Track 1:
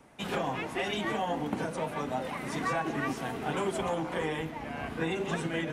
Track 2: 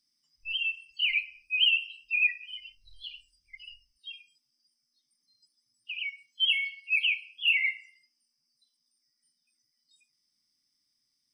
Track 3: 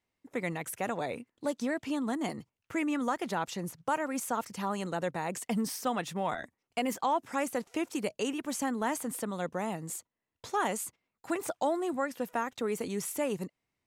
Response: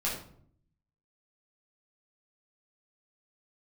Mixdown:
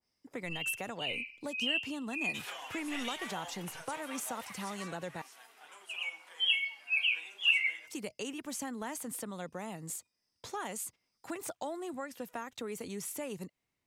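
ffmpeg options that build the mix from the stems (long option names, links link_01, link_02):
-filter_complex "[0:a]highpass=980,crystalizer=i=1:c=0,adelay=2150,volume=-9dB,afade=type=out:start_time=4.38:duration=0.58:silence=0.354813[link_01];[1:a]volume=-9dB,asplit=2[link_02][link_03];[link_03]volume=-11.5dB[link_04];[2:a]acrossover=split=120[link_05][link_06];[link_06]acompressor=threshold=-41dB:ratio=2[link_07];[link_05][link_07]amix=inputs=2:normalize=0,volume=-1.5dB,asplit=3[link_08][link_09][link_10];[link_08]atrim=end=5.22,asetpts=PTS-STARTPTS,afade=type=out:start_time=5.216:duration=0.004:curve=hsin[link_11];[link_09]atrim=start=5.22:end=7.87,asetpts=PTS-STARTPTS,volume=0[link_12];[link_10]atrim=start=7.87,asetpts=PTS-STARTPTS,afade=type=in:duration=0.004:curve=hsin[link_13];[link_11][link_12][link_13]concat=n=3:v=0:a=1,asplit=2[link_14][link_15];[link_15]apad=whole_len=499764[link_16];[link_02][link_16]sidechaincompress=threshold=-56dB:ratio=8:attack=16:release=288[link_17];[3:a]atrim=start_sample=2205[link_18];[link_04][link_18]afir=irnorm=-1:irlink=0[link_19];[link_01][link_17][link_14][link_19]amix=inputs=4:normalize=0,adynamicequalizer=threshold=0.00316:dfrequency=2000:dqfactor=0.7:tfrequency=2000:tqfactor=0.7:attack=5:release=100:ratio=0.375:range=2.5:mode=boostabove:tftype=highshelf"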